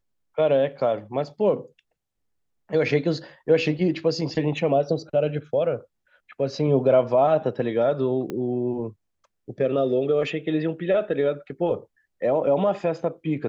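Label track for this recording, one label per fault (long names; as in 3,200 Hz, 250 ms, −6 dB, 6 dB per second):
8.300000	8.300000	click −18 dBFS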